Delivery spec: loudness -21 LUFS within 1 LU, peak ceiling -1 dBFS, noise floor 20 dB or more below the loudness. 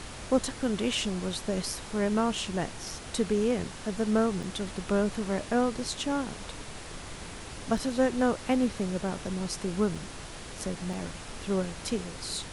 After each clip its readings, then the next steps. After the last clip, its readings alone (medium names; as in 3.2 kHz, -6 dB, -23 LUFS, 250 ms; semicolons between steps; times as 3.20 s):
dropouts 4; longest dropout 3.7 ms; noise floor -43 dBFS; noise floor target -51 dBFS; loudness -30.5 LUFS; peak level -11.5 dBFS; loudness target -21.0 LUFS
-> interpolate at 4.43/7.77/9.95/10.93 s, 3.7 ms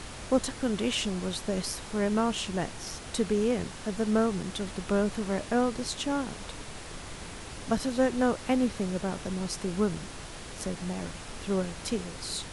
dropouts 0; noise floor -43 dBFS; noise floor target -51 dBFS
-> noise print and reduce 8 dB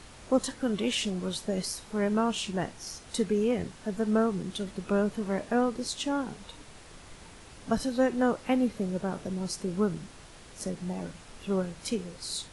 noise floor -50 dBFS; noise floor target -51 dBFS
-> noise print and reduce 6 dB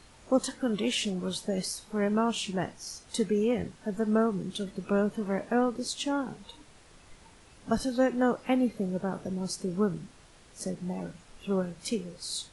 noise floor -56 dBFS; loudness -30.5 LUFS; peak level -12.0 dBFS; loudness target -21.0 LUFS
-> trim +9.5 dB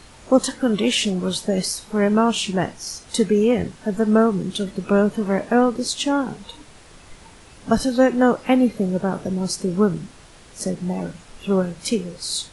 loudness -21.0 LUFS; peak level -2.5 dBFS; noise floor -46 dBFS